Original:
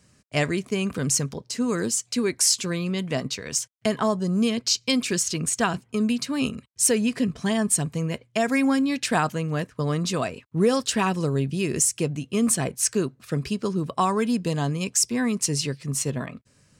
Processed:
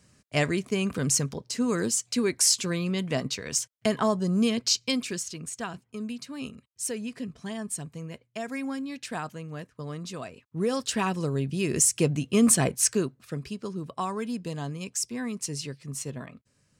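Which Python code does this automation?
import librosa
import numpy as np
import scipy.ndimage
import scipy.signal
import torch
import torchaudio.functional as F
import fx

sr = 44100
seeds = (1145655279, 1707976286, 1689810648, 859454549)

y = fx.gain(x, sr, db=fx.line((4.73, -1.5), (5.37, -11.5), (10.25, -11.5), (10.91, -4.0), (11.41, -4.0), (12.07, 2.0), (12.72, 2.0), (13.42, -8.5)))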